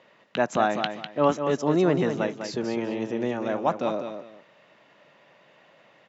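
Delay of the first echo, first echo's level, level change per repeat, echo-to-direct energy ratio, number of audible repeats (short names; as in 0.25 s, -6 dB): 0.2 s, -7.5 dB, -12.0 dB, -7.0 dB, 2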